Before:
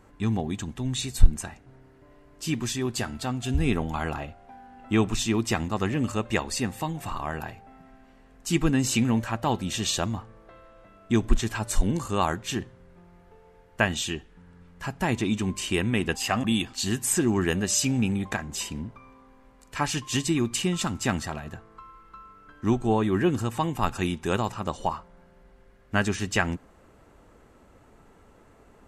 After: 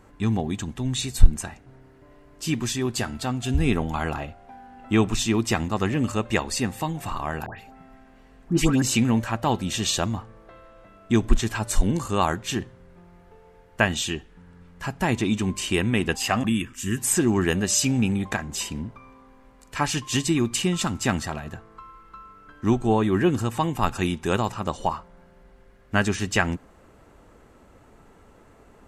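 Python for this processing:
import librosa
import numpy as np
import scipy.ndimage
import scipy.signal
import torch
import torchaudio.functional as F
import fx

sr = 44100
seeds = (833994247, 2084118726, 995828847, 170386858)

y = fx.dispersion(x, sr, late='highs', ms=125.0, hz=1600.0, at=(7.46, 8.82))
y = fx.fixed_phaser(y, sr, hz=1800.0, stages=4, at=(16.48, 16.96), fade=0.02)
y = F.gain(torch.from_numpy(y), 2.5).numpy()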